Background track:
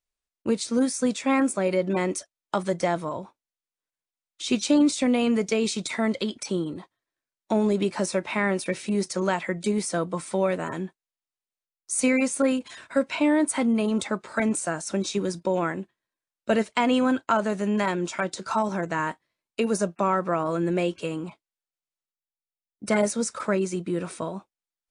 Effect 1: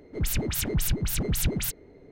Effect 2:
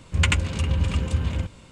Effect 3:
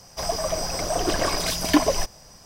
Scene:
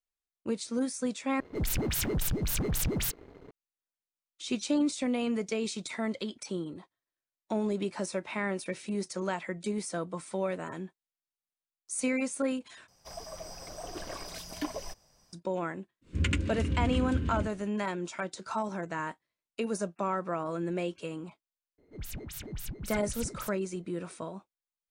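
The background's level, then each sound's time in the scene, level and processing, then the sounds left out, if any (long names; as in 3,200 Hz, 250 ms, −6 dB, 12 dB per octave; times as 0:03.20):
background track −8 dB
0:01.40: overwrite with 1 −9.5 dB + leveller curve on the samples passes 3
0:12.88: overwrite with 3 −17 dB
0:16.01: mix in 2 −8 dB, fades 0.10 s + drawn EQ curve 160 Hz 0 dB, 290 Hz +12 dB, 820 Hz −12 dB, 1,600 Hz −1 dB, 10,000 Hz −5 dB
0:21.78: mix in 1 −13.5 dB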